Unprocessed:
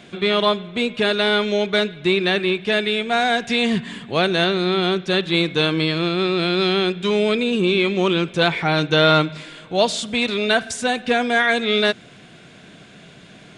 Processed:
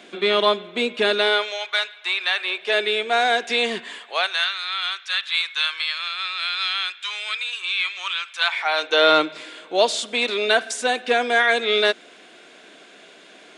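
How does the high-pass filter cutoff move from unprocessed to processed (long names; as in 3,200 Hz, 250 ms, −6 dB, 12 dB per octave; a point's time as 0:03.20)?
high-pass filter 24 dB per octave
0:01.17 260 Hz
0:01.59 820 Hz
0:02.35 820 Hz
0:02.85 330 Hz
0:03.78 330 Hz
0:04.47 1,200 Hz
0:08.34 1,200 Hz
0:09.15 310 Hz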